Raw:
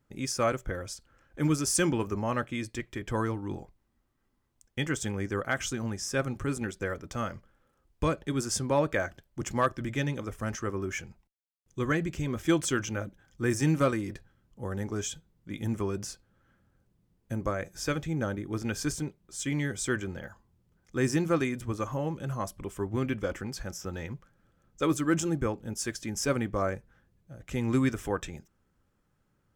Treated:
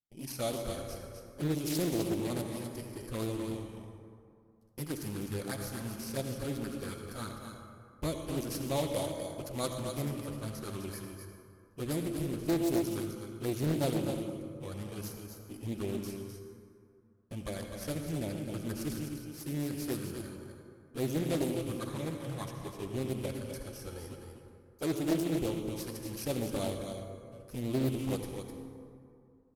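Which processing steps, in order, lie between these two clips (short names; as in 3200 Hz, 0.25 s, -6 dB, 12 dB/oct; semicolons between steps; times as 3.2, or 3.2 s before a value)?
FFT order left unsorted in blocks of 16 samples; LPF 12000 Hz 24 dB/oct; RIAA curve recording; gate with hold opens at -38 dBFS; tilt -3.5 dB/oct; soft clip -14 dBFS, distortion -25 dB; envelope flanger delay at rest 11.3 ms, full sweep at -25.5 dBFS; echo 0.255 s -7 dB; reverb RT60 2.4 s, pre-delay 58 ms, DRR 4.5 dB; Doppler distortion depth 0.61 ms; gain -4.5 dB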